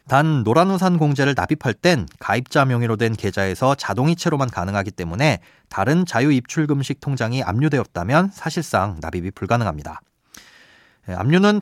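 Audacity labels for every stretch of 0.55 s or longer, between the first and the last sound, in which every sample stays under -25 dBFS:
10.370000	11.080000	silence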